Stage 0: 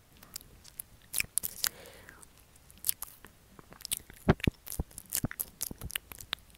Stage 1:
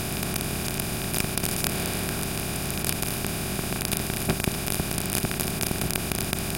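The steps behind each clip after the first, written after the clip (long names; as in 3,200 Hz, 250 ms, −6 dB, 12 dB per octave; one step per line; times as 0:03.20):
compressor on every frequency bin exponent 0.2
level −3.5 dB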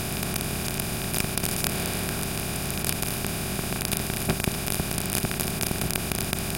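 parametric band 310 Hz −2.5 dB 0.35 octaves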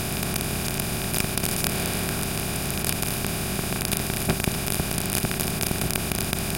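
in parallel at −8 dB: soft clipping −11.5 dBFS, distortion −16 dB
on the sum: convolution reverb RT60 4.4 s, pre-delay 108 ms, DRR 18 dB
level −1 dB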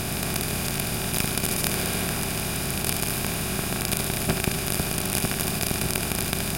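feedback echo with a high-pass in the loop 73 ms, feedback 62%, level −6 dB
level −1 dB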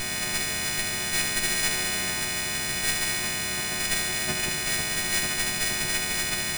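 every partial snapped to a pitch grid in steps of 3 semitones
windowed peak hold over 3 samples
level −7 dB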